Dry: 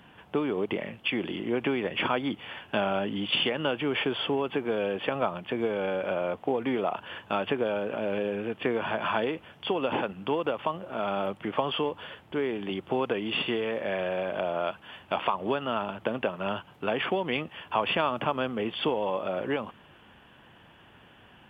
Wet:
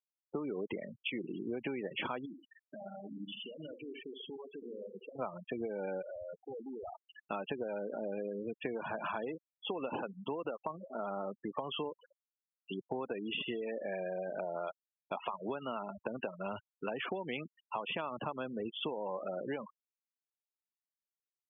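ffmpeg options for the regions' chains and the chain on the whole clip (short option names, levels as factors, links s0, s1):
-filter_complex "[0:a]asettb=1/sr,asplit=3[s0][s1][s2];[s0]atrim=end=2.254[s3];[s1]atrim=start=2.25:end=5.19,asetpts=PTS-STARTPTS,afade=t=in:d=0.004:c=qsin,afade=t=out:st=2.936:d=0.004:c=qsin,acompressor=threshold=0.0141:ratio=4:attack=3.2:release=140:knee=1:detection=peak,aecho=1:1:71|142|213|284|355|426|497|568:0.501|0.296|0.174|0.103|0.0607|0.0358|0.0211|0.0125,atrim=end_sample=129654[s4];[s2]atrim=start=5.186[s5];[s3][s4]acrossfade=d=0.004:c1=hsin:c2=qsin[s6];[s6][s5]acrossfade=d=0.004:c1=qsin:c2=hsin,asettb=1/sr,asplit=3[s7][s8][s9];[s7]atrim=end=6.024[s10];[s8]atrim=start=6.02:end=7.16,asetpts=PTS-STARTPTS,afade=t=in:d=0.004:c=qsin,afade=t=out:st=1.136:d=0.004:c=qsin,equalizer=f=2900:w=1.9:g=5.5,aeval=exprs='(tanh(50.1*val(0)+0.7)-tanh(0.7))/50.1':c=same[s11];[s9]atrim=start=7.156[s12];[s10][s11]acrossfade=d=0.004:c1=hsin:c2=qsin[s13];[s13][s12]acrossfade=d=0.004:c1=qsin:c2=hsin,asettb=1/sr,asplit=3[s14][s15][s16];[s14]atrim=end=12.234[s17];[s15]atrim=start=12.23:end=12.71,asetpts=PTS-STARTPTS,afade=t=in:d=0.004:c=qsin,afade=t=out:st=0.476:d=0.004:c=qsin,asuperpass=centerf=2900:order=12:qfactor=3.4,aecho=1:1:5.1:0.39,atrim=end_sample=21168[s18];[s16]atrim=start=12.706[s19];[s17][s18]acrossfade=d=0.004:c1=hsin:c2=qsin[s20];[s20][s19]acrossfade=d=0.004:c1=qsin:c2=hsin,highpass=63,afftfilt=real='re*gte(hypot(re,im),0.0447)':imag='im*gte(hypot(re,im),0.0447)':win_size=1024:overlap=0.75,acompressor=threshold=0.0355:ratio=4,volume=0.531"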